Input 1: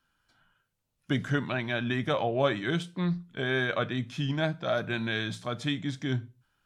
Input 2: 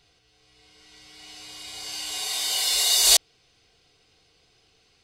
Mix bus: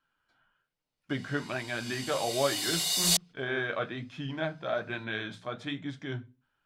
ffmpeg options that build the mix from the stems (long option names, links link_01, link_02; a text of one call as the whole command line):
ffmpeg -i stem1.wav -i stem2.wav -filter_complex "[0:a]bass=frequency=250:gain=-6,treble=frequency=4000:gain=-10,bandreject=frequency=50:width_type=h:width=6,bandreject=frequency=100:width_type=h:width=6,bandreject=frequency=150:width_type=h:width=6,bandreject=frequency=200:width_type=h:width=6,bandreject=frequency=250:width_type=h:width=6,flanger=delay=6.6:depth=8.8:regen=-45:speed=1.2:shape=sinusoidal,volume=1.5dB,asplit=2[link_01][link_02];[1:a]volume=-8.5dB[link_03];[link_02]apad=whole_len=222186[link_04];[link_03][link_04]sidechaingate=range=-33dB:threshold=-54dB:ratio=16:detection=peak[link_05];[link_01][link_05]amix=inputs=2:normalize=0" out.wav